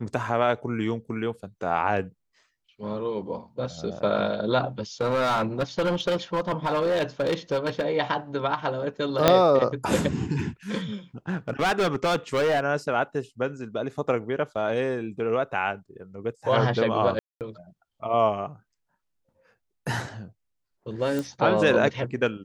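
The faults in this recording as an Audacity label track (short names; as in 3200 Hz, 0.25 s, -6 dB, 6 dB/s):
5.010000	7.830000	clipped -20 dBFS
9.280000	9.280000	pop -1 dBFS
11.290000	12.600000	clipped -19.5 dBFS
17.190000	17.410000	gap 0.218 s
21.190000	21.190000	pop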